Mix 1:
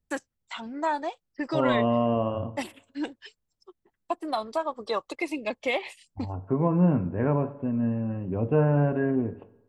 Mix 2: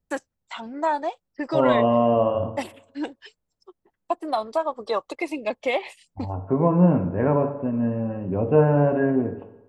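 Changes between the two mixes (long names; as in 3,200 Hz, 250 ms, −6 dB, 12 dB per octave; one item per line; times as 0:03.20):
second voice: send +8.0 dB
master: add parametric band 660 Hz +5 dB 1.7 octaves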